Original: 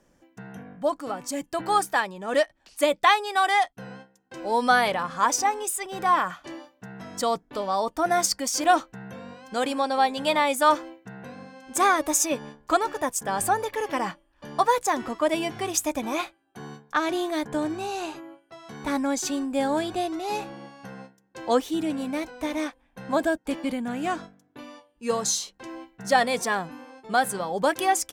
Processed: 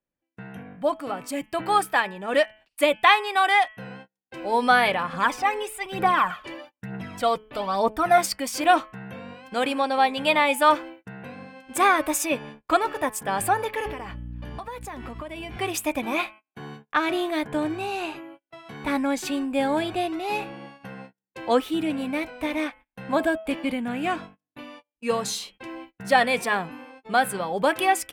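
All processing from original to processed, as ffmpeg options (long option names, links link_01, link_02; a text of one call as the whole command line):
ffmpeg -i in.wav -filter_complex "[0:a]asettb=1/sr,asplit=3[link_01][link_02][link_03];[link_01]atrim=end=5.134[link_04];[link_02]atrim=start=5.13:end=8.18,asetpts=PTS-STARTPTS,afade=type=in:duration=0.004:curve=qsin,afade=type=out:start_time=3.046:duration=0.004:curve=qsin,acrossover=split=3500[link_05][link_06];[link_06]acompressor=threshold=-36dB:ratio=4:attack=1:release=60[link_07];[link_05][link_07]amix=inputs=2:normalize=0,aphaser=in_gain=1:out_gain=1:delay=2.2:decay=0.54:speed=1.1:type=triangular[link_08];[link_03]atrim=start=8.176[link_09];[link_04][link_08]acrossfade=duration=0.004:curve1=hsin:curve2=qsin[link_10];[link_10][link_09]acrossfade=duration=0.004:curve1=qsin:curve2=hsin,asettb=1/sr,asplit=3[link_11][link_12][link_13];[link_11]atrim=end=13.864[link_14];[link_12]atrim=start=13.86:end=15.57,asetpts=PTS-STARTPTS,afade=type=in:duration=0.004:curve=qsin,afade=type=out:start_time=1.706:duration=0.004:curve=qsin,aeval=exprs='val(0)+0.0178*(sin(2*PI*60*n/s)+sin(2*PI*2*60*n/s)/2+sin(2*PI*3*60*n/s)/3+sin(2*PI*4*60*n/s)/4+sin(2*PI*5*60*n/s)/5)':channel_layout=same,acompressor=threshold=-33dB:ratio=12:attack=3.2:release=140:knee=1:detection=peak[link_15];[link_13]atrim=start=15.566[link_16];[link_14][link_15]acrossfade=duration=0.004:curve1=hsin:curve2=qsin[link_17];[link_17][link_16]acrossfade=duration=0.004:curve1=qsin:curve2=hsin,bandreject=frequency=215.7:width_type=h:width=4,bandreject=frequency=431.4:width_type=h:width=4,bandreject=frequency=647.1:width_type=h:width=4,bandreject=frequency=862.8:width_type=h:width=4,bandreject=frequency=1078.5:width_type=h:width=4,bandreject=frequency=1294.2:width_type=h:width=4,bandreject=frequency=1509.9:width_type=h:width=4,bandreject=frequency=1725.6:width_type=h:width=4,bandreject=frequency=1941.3:width_type=h:width=4,bandreject=frequency=2157:width_type=h:width=4,bandreject=frequency=2372.7:width_type=h:width=4,bandreject=frequency=2588.4:width_type=h:width=4,bandreject=frequency=2804.1:width_type=h:width=4,bandreject=frequency=3019.8:width_type=h:width=4,bandreject=frequency=3235.5:width_type=h:width=4,agate=range=-28dB:threshold=-46dB:ratio=16:detection=peak,equalizer=frequency=100:width_type=o:width=0.67:gain=3,equalizer=frequency=2500:width_type=o:width=0.67:gain=7,equalizer=frequency=6300:width_type=o:width=0.67:gain=-10,volume=1dB" out.wav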